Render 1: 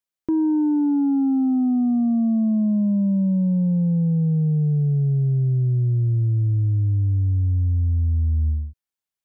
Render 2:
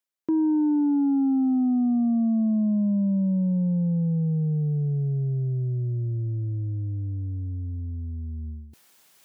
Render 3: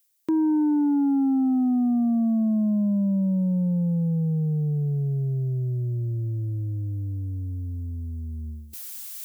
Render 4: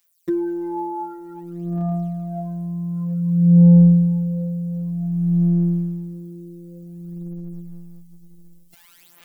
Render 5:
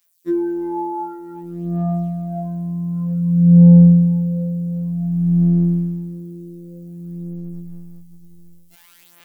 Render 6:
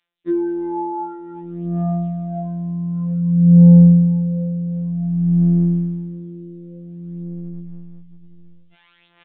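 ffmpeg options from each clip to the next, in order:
-af "areverse,acompressor=mode=upward:threshold=0.0316:ratio=2.5,areverse,highpass=150,volume=0.794"
-af "crystalizer=i=7.5:c=0"
-filter_complex "[0:a]aphaser=in_gain=1:out_gain=1:delay=2.4:decay=0.7:speed=0.54:type=sinusoidal,afftfilt=real='hypot(re,im)*cos(PI*b)':imag='0':win_size=1024:overlap=0.75,acrossover=split=3000[s0][s1];[s1]acompressor=threshold=0.00398:ratio=4:attack=1:release=60[s2];[s0][s2]amix=inputs=2:normalize=0,volume=1.58"
-af "afftfilt=real='re*2*eq(mod(b,4),0)':imag='im*2*eq(mod(b,4),0)':win_size=2048:overlap=0.75,volume=0.841"
-af "aresample=8000,aresample=44100"

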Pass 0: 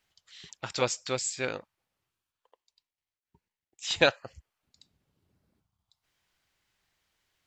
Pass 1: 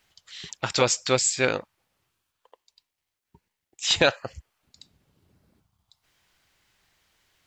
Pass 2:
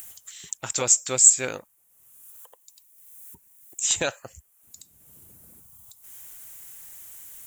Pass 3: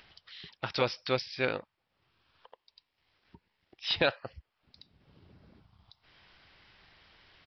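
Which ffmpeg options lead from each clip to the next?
-af "alimiter=level_in=5.31:limit=0.891:release=50:level=0:latency=1,volume=0.531"
-af "acompressor=mode=upward:threshold=0.0126:ratio=2.5,aexciter=amount=14.9:drive=4.3:freq=6900,volume=0.447"
-af "aresample=11025,aresample=44100"

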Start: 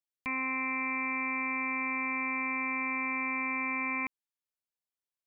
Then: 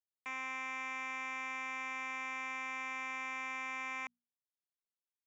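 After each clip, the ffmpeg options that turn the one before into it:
-af "aderivative,bandreject=f=60:t=h:w=6,bandreject=f=120:t=h:w=6,bandreject=f=180:t=h:w=6,bandreject=f=240:t=h:w=6,adynamicsmooth=sensitivity=5.5:basefreq=750,volume=3.76"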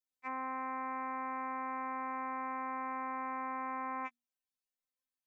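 -af "afftfilt=real='re*3.46*eq(mod(b,12),0)':imag='im*3.46*eq(mod(b,12),0)':win_size=2048:overlap=0.75,volume=1.12"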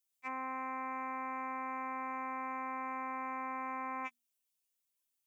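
-af "aexciter=amount=2.3:drive=4.7:freq=2400,volume=0.891"

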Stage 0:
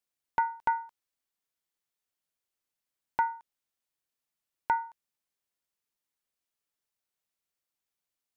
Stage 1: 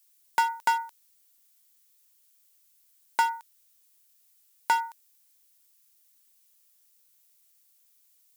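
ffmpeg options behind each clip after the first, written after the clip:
-filter_complex "[0:a]highpass=160,asplit=2[s0][s1];[s1]asoftclip=type=hard:threshold=0.0251,volume=0.668[s2];[s0][s2]amix=inputs=2:normalize=0,crystalizer=i=8.5:c=0,volume=0.75"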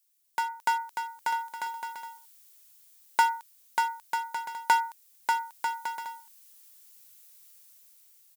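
-af "dynaudnorm=f=110:g=13:m=5.01,aecho=1:1:590|944|1156|1284|1360:0.631|0.398|0.251|0.158|0.1,volume=0.447"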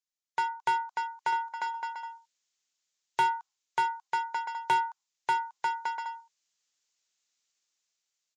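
-af "aresample=16000,aresample=44100,afftdn=nr=15:nf=-49,asoftclip=type=tanh:threshold=0.0794,volume=1.26"

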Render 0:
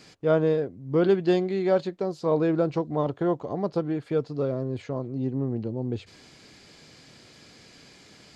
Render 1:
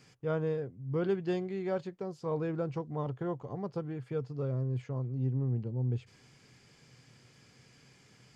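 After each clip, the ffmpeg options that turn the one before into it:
-af "equalizer=f=125:t=o:w=0.33:g=12,equalizer=f=315:t=o:w=0.33:g=-5,equalizer=f=630:t=o:w=0.33:g=-6,equalizer=f=4000:t=o:w=0.33:g=-9,volume=0.376"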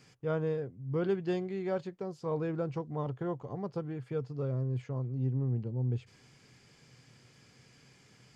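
-af anull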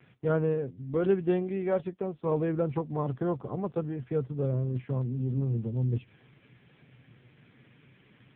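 -af "volume=2" -ar 8000 -c:a libopencore_amrnb -b:a 5900

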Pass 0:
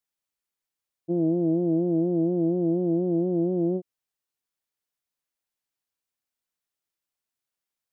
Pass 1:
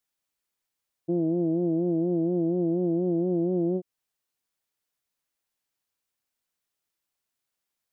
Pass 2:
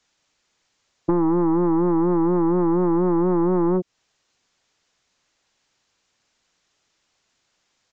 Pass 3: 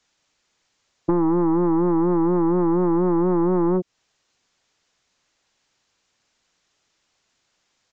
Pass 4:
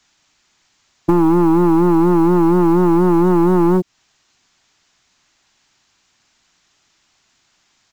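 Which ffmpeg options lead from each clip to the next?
-af "alimiter=limit=0.0841:level=0:latency=1:release=364,volume=1.5"
-filter_complex "[0:a]aresample=16000,aeval=exprs='0.133*sin(PI/2*1.78*val(0)/0.133)':c=same,aresample=44100,acrossover=split=250|690[s0][s1][s2];[s0]acompressor=threshold=0.0224:ratio=4[s3];[s1]acompressor=threshold=0.0224:ratio=4[s4];[s2]acompressor=threshold=0.01:ratio=4[s5];[s3][s4][s5]amix=inputs=3:normalize=0,volume=2.82"
-af anull
-filter_complex "[0:a]equalizer=f=500:t=o:w=0.47:g=-9.5,asplit=2[s0][s1];[s1]asoftclip=type=hard:threshold=0.0596,volume=0.447[s2];[s0][s2]amix=inputs=2:normalize=0,acrusher=bits=9:mode=log:mix=0:aa=0.000001,volume=2"

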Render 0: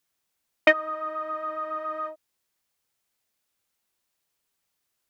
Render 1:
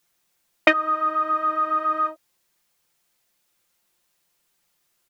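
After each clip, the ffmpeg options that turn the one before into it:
-filter_complex "[0:a]aecho=1:1:5.7:0.5,asplit=2[s0][s1];[s1]alimiter=limit=0.2:level=0:latency=1:release=220,volume=1[s2];[s0][s2]amix=inputs=2:normalize=0,volume=1.12"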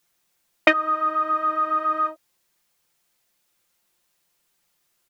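-af anull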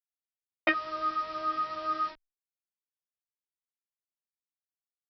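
-filter_complex "[0:a]aresample=11025,acrusher=bits=5:mix=0:aa=0.000001,aresample=44100,asplit=2[s0][s1];[s1]adelay=11.2,afreqshift=2.3[s2];[s0][s2]amix=inputs=2:normalize=1,volume=0.473"

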